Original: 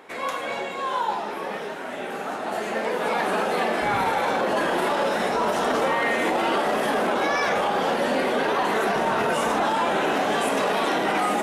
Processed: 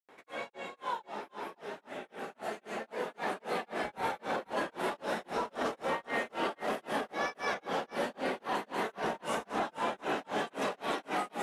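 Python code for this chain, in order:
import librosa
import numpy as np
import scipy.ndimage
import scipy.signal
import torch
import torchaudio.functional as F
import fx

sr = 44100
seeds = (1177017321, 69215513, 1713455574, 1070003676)

y = fx.granulator(x, sr, seeds[0], grain_ms=243.0, per_s=3.8, spray_ms=100.0, spread_st=0)
y = y + 10.0 ** (-13.5 / 20.0) * np.pad(y, (int(490 * sr / 1000.0), 0))[:len(y)]
y = F.gain(torch.from_numpy(y), -8.0).numpy()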